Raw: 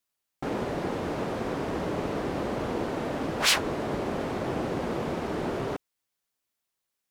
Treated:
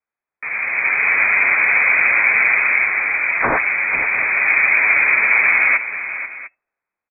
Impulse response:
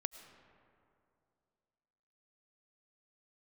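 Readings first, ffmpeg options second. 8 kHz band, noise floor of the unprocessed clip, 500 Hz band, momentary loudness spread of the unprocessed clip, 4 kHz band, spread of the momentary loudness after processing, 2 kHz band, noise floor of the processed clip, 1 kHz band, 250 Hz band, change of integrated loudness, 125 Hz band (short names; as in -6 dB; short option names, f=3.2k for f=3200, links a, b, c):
under -40 dB, -84 dBFS, -2.0 dB, 7 LU, under -40 dB, 12 LU, +25.0 dB, under -85 dBFS, +9.0 dB, -7.5 dB, +16.5 dB, n/a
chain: -filter_complex "[0:a]dynaudnorm=f=120:g=13:m=14dB,flanger=delay=8.2:depth=1.7:regen=-26:speed=0.44:shape=triangular,aecho=1:1:487|700:0.251|0.133[a];[1:a]atrim=start_sample=2205,atrim=end_sample=3528[b];[a][b]afir=irnorm=-1:irlink=0,lowpass=f=2.2k:t=q:w=0.5098,lowpass=f=2.2k:t=q:w=0.6013,lowpass=f=2.2k:t=q:w=0.9,lowpass=f=2.2k:t=q:w=2.563,afreqshift=-2600,volume=7.5dB"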